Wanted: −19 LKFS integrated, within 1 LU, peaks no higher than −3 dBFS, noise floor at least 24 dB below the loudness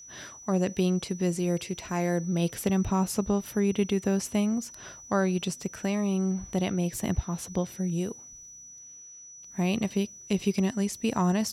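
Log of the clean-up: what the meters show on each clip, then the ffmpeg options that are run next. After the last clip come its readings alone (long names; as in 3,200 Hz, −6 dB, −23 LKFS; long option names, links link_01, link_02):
interfering tone 5,900 Hz; level of the tone −45 dBFS; integrated loudness −28.5 LKFS; sample peak −12.0 dBFS; target loudness −19.0 LKFS
→ -af "bandreject=frequency=5900:width=30"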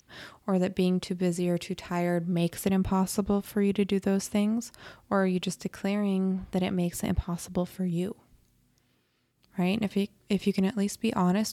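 interfering tone none found; integrated loudness −29.0 LKFS; sample peak −12.0 dBFS; target loudness −19.0 LKFS
→ -af "volume=10dB,alimiter=limit=-3dB:level=0:latency=1"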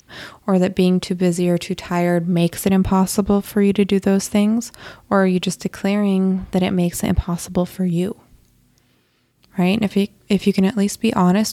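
integrated loudness −19.0 LKFS; sample peak −3.0 dBFS; background noise floor −59 dBFS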